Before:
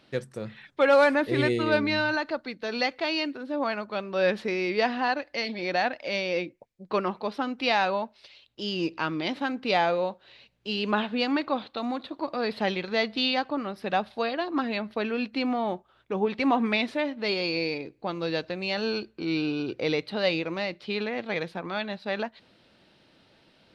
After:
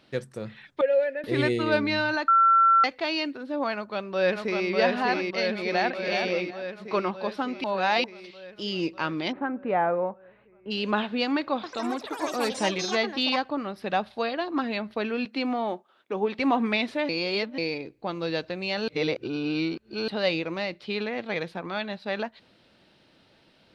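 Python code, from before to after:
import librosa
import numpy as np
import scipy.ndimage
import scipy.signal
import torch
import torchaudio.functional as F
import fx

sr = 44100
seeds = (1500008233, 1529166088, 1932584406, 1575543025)

y = fx.vowel_filter(x, sr, vowel='e', at=(0.81, 1.24))
y = fx.echo_throw(y, sr, start_s=3.72, length_s=0.98, ms=600, feedback_pct=70, wet_db=-2.0)
y = fx.echo_throw(y, sr, start_s=5.57, length_s=0.41, ms=370, feedback_pct=20, wet_db=-6.0)
y = fx.lowpass(y, sr, hz=1700.0, slope=24, at=(9.31, 10.7), fade=0.02)
y = fx.echo_pitch(y, sr, ms=95, semitones=6, count=3, db_per_echo=-6.0, at=(11.54, 13.98))
y = fx.highpass(y, sr, hz=210.0, slope=24, at=(15.25, 16.39))
y = fx.edit(y, sr, fx.bleep(start_s=2.28, length_s=0.56, hz=1350.0, db=-15.0),
    fx.reverse_span(start_s=7.64, length_s=0.4),
    fx.reverse_span(start_s=17.09, length_s=0.49),
    fx.reverse_span(start_s=18.88, length_s=1.2), tone=tone)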